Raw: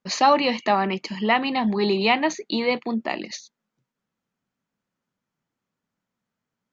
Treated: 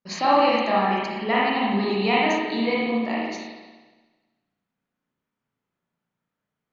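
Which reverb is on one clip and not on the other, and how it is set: spring tank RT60 1.3 s, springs 35/56 ms, chirp 25 ms, DRR -6.5 dB; gain -7 dB

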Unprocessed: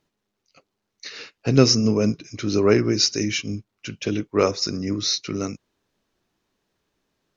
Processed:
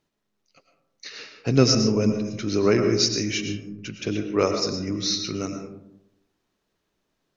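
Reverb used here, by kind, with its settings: digital reverb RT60 0.84 s, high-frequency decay 0.35×, pre-delay 70 ms, DRR 5.5 dB; gain -2.5 dB

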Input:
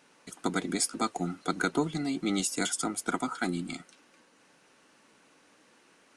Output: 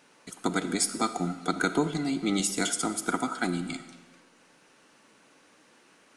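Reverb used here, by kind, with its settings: digital reverb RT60 1.3 s, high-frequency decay 0.95×, pre-delay 5 ms, DRR 11 dB; gain +2 dB

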